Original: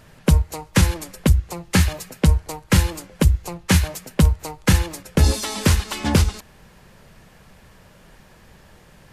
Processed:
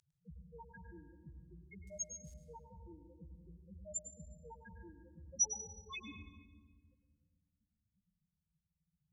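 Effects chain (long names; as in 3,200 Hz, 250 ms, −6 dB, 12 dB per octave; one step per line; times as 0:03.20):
brickwall limiter −14 dBFS, peak gain reduction 10 dB
spectral peaks only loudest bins 1
0:01.87–0:02.34: floating-point word with a short mantissa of 8 bits
resonant band-pass 7,000 Hz, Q 1.6
on a send: convolution reverb RT60 1.5 s, pre-delay 105 ms, DRR 6.5 dB
on the sum: level +17 dB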